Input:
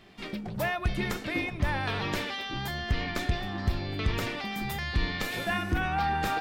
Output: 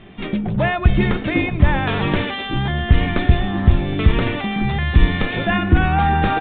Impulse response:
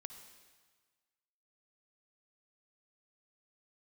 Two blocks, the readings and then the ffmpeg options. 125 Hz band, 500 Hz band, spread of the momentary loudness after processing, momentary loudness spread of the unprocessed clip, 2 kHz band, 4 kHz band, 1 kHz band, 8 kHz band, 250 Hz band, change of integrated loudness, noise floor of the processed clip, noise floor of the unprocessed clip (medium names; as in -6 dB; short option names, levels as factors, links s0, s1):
+15.0 dB, +11.5 dB, 5 LU, 5 LU, +9.0 dB, +7.0 dB, +10.0 dB, under -35 dB, +14.5 dB, +12.5 dB, -28 dBFS, -40 dBFS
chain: -af "lowshelf=f=360:g=8.5,bandreject=f=50:t=h:w=6,bandreject=f=100:t=h:w=6,aresample=8000,aresample=44100,volume=2.66"